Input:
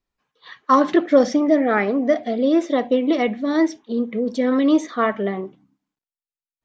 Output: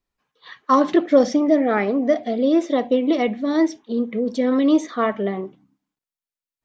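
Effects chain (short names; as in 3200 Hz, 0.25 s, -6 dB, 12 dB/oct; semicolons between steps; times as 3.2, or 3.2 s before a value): dynamic EQ 1600 Hz, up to -4 dB, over -35 dBFS, Q 1.6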